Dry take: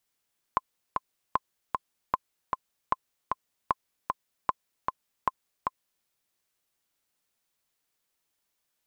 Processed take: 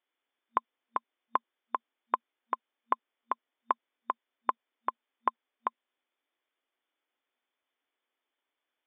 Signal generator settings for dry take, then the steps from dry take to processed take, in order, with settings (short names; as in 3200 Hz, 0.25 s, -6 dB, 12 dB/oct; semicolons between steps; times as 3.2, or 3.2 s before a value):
metronome 153 bpm, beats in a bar 2, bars 7, 1040 Hz, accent 3.5 dB -10 dBFS
FFT band-pass 230–3600 Hz; notch 2700 Hz, Q 16